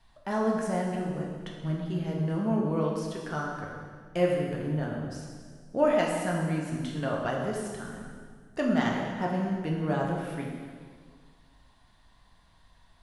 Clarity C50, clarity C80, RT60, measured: 1.5 dB, 3.0 dB, 1.8 s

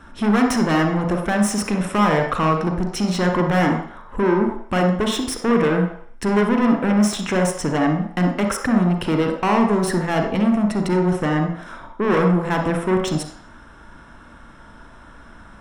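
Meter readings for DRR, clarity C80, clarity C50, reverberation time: 3.0 dB, 8.5 dB, 4.5 dB, 0.60 s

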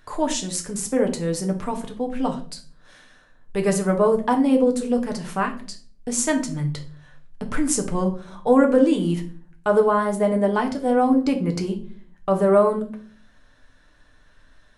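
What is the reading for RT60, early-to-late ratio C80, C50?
0.45 s, 17.0 dB, 11.5 dB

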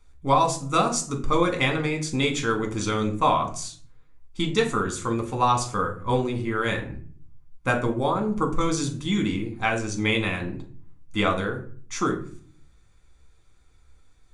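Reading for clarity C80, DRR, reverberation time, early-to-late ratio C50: 15.5 dB, 2.0 dB, 0.50 s, 11.0 dB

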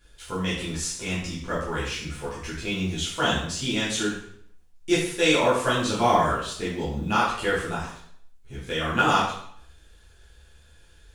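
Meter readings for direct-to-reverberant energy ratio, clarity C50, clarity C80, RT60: -10.5 dB, 2.5 dB, 6.0 dB, 0.65 s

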